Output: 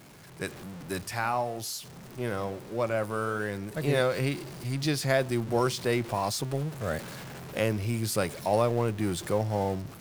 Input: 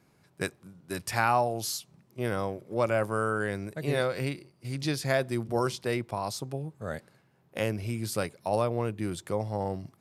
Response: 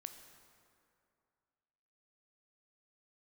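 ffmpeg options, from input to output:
-filter_complex "[0:a]aeval=exprs='val(0)+0.5*0.0126*sgn(val(0))':c=same,dynaudnorm=f=200:g=5:m=3.55,asettb=1/sr,asplit=3[s0][s1][s2];[s0]atrim=end=1.034[s3];[s1]atrim=start=1.03:end=3.75,asetpts=PTS-STARTPTS,afade=t=in:d=0.004:c=qsin,afade=t=out:st=2.716:d=0.004:c=qsin,flanger=delay=9.2:depth=4.2:regen=-82:speed=1.2:shape=sinusoidal[s4];[s2]atrim=start=3.746[s5];[s3][s4]acrossfade=d=0.004:c1=hsin:c2=qsin[s6];[s6][s5]acrossfade=d=0.004:c1=qsin:c2=hsin,volume=0.376"

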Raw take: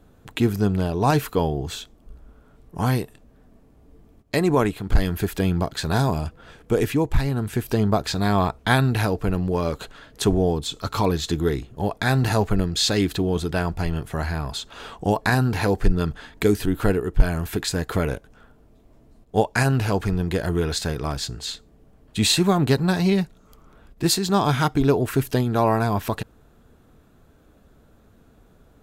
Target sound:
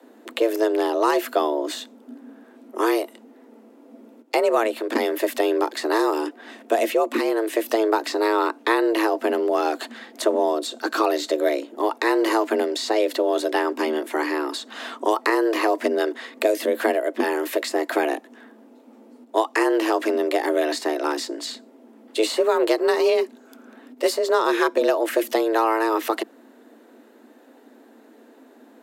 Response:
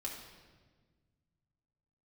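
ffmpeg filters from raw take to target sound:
-filter_complex "[0:a]acrossover=split=97|1300[s0][s1][s2];[s0]acompressor=threshold=0.01:ratio=4[s3];[s1]acompressor=threshold=0.1:ratio=4[s4];[s2]acompressor=threshold=0.02:ratio=4[s5];[s3][s4][s5]amix=inputs=3:normalize=0,afreqshift=220,equalizer=f=2300:w=1.5:g=2.5,volume=1.5"

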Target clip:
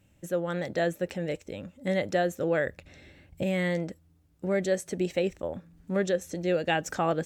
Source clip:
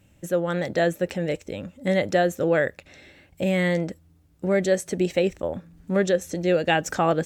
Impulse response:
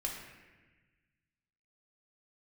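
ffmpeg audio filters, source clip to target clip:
-filter_complex "[0:a]asettb=1/sr,asplit=3[s0][s1][s2];[s0]atrim=end=2.674[s3];[s1]atrim=start=2.67:end=3.43,asetpts=PTS-STARTPTS,afade=t=in:d=0.004:c=qsin,afade=t=out:st=0.756:d=0.004:c=qsin,lowshelf=f=230:g=10.5[s4];[s2]atrim=start=3.426[s5];[s3][s4]acrossfade=d=0.004:c1=hsin:c2=qsin[s6];[s6][s5]acrossfade=d=0.004:c1=qsin:c2=hsin,volume=0.531"

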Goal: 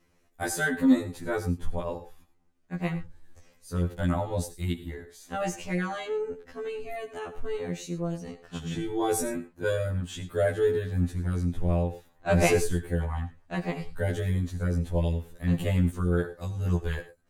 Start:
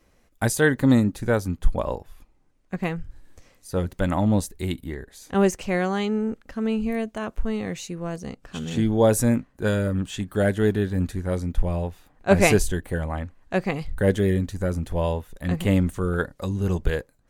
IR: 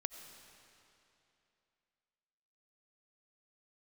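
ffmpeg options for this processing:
-filter_complex "[0:a]aeval=exprs='0.841*(cos(1*acos(clip(val(0)/0.841,-1,1)))-cos(1*PI/2))+0.015*(cos(5*acos(clip(val(0)/0.841,-1,1)))-cos(5*PI/2))':c=same[s0];[1:a]atrim=start_sample=2205,afade=t=out:st=0.19:d=0.01,atrim=end_sample=8820,asetrate=52920,aresample=44100[s1];[s0][s1]afir=irnorm=-1:irlink=0,afftfilt=real='re*2*eq(mod(b,4),0)':imag='im*2*eq(mod(b,4),0)':win_size=2048:overlap=0.75"

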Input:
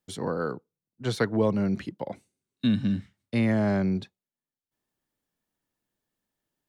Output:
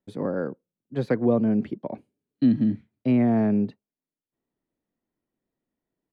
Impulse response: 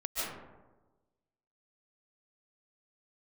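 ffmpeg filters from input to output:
-af "firequalizer=gain_entry='entry(100,0);entry(220,5);entry(940,-4);entry(2300,-7);entry(5300,-19)':delay=0.05:min_phase=1,asetrate=48069,aresample=44100"

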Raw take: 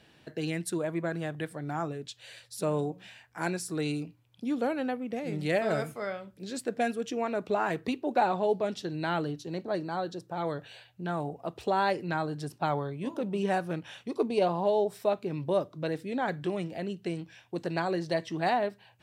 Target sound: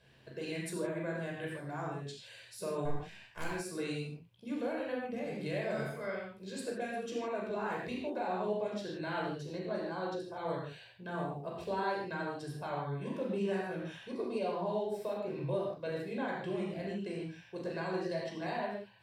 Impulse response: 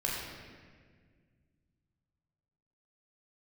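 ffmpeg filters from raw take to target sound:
-filter_complex "[0:a]alimiter=limit=0.0841:level=0:latency=1:release=252,asettb=1/sr,asplit=3[s0][s1][s2];[s0]atrim=end=2.854[s3];[s1]atrim=start=2.85:end=3.44,asetpts=PTS-STARTPTS,afade=t=in:d=0.004:c=qsin,afade=t=out:st=0.586:d=0.004:c=qsin,aeval=exprs='0.0841*(cos(1*acos(clip(val(0)/0.0841,-1,1)))-cos(1*PI/2))+0.0266*(cos(6*acos(clip(val(0)/0.0841,-1,1)))-cos(6*PI/2))+0.00531*(cos(8*acos(clip(val(0)/0.0841,-1,1)))-cos(8*PI/2))':c=same[s4];[s2]atrim=start=3.436[s5];[s3][s4]acrossfade=d=0.004:c1=hsin:c2=qsin[s6];[s6][s5]acrossfade=d=0.004:c1=qsin:c2=hsin[s7];[1:a]atrim=start_sample=2205,afade=t=out:st=0.22:d=0.01,atrim=end_sample=10143[s8];[s7][s8]afir=irnorm=-1:irlink=0,volume=0.376"

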